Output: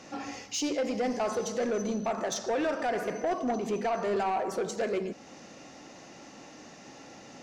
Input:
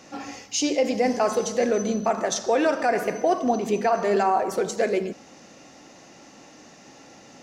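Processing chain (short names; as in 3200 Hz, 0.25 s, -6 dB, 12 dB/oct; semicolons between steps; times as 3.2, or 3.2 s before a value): high shelf 11000 Hz -10.5 dB; in parallel at -0.5 dB: compressor, threshold -36 dBFS, peak gain reduction 17.5 dB; on the sum: soft clip -17.5 dBFS, distortion -14 dB; gain -6 dB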